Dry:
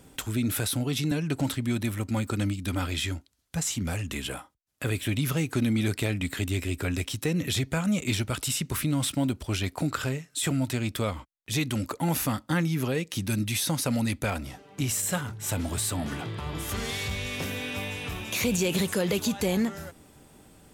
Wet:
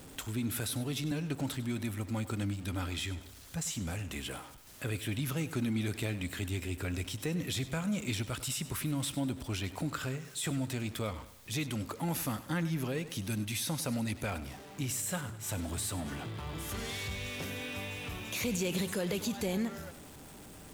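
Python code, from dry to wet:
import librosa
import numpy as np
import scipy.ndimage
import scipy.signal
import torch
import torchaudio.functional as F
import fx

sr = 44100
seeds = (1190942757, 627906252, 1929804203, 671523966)

y = x + 0.5 * 10.0 ** (-39.0 / 20.0) * np.sign(x)
y = fx.echo_feedback(y, sr, ms=99, feedback_pct=44, wet_db=-15)
y = y * 10.0 ** (-8.0 / 20.0)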